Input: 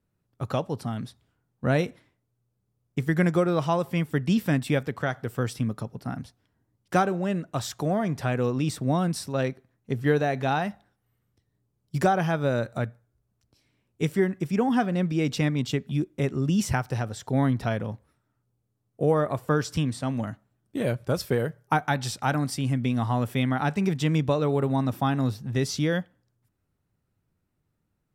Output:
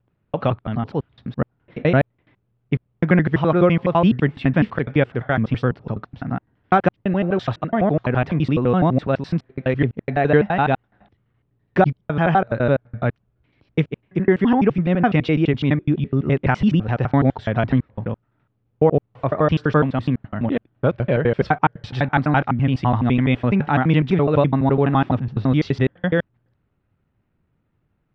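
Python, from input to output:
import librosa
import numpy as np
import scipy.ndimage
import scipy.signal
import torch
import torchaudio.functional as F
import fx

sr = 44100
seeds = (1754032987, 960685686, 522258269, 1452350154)

y = fx.block_reorder(x, sr, ms=84.0, group=4)
y = scipy.signal.sosfilt(scipy.signal.butter(4, 3100.0, 'lowpass', fs=sr, output='sos'), y)
y = y * librosa.db_to_amplitude(7.5)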